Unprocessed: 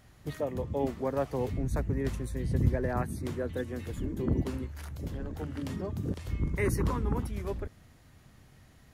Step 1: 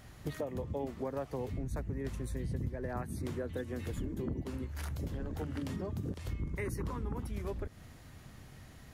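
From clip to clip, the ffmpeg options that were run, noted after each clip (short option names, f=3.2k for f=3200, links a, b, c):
-af "acompressor=threshold=-39dB:ratio=6,volume=4.5dB"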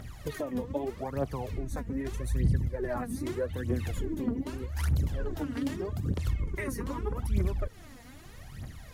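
-af "aphaser=in_gain=1:out_gain=1:delay=4.4:decay=0.72:speed=0.81:type=triangular,volume=2.5dB"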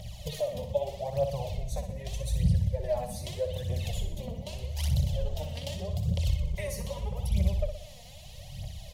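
-af "firequalizer=gain_entry='entry(190,0);entry(270,-30);entry(570,6);entry(1400,-23);entry(2000,-7);entry(3000,7);entry(9400,0)':delay=0.05:min_phase=1,aecho=1:1:61|122|183|244|305|366:0.398|0.203|0.104|0.0528|0.0269|0.0137,volume=1.5dB"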